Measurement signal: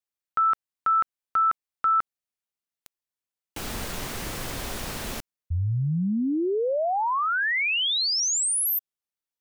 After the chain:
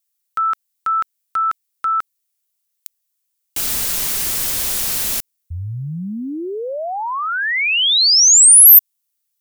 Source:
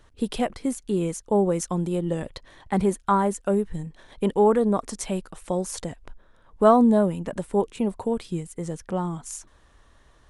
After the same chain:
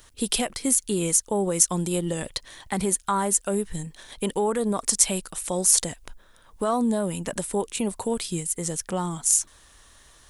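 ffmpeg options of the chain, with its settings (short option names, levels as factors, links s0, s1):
-af "alimiter=limit=0.15:level=0:latency=1:release=130,crystalizer=i=6.5:c=0,volume=0.891"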